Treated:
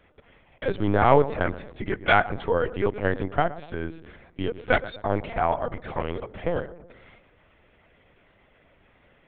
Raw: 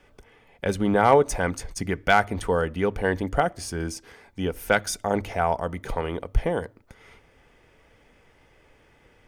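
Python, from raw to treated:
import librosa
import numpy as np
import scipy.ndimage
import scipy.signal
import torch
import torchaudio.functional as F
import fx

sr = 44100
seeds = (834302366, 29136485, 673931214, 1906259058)

p1 = scipy.signal.sosfilt(scipy.signal.butter(4, 150.0, 'highpass', fs=sr, output='sos'), x)
p2 = p1 + fx.echo_filtered(p1, sr, ms=120, feedback_pct=56, hz=940.0, wet_db=-14.0, dry=0)
y = fx.lpc_vocoder(p2, sr, seeds[0], excitation='pitch_kept', order=10)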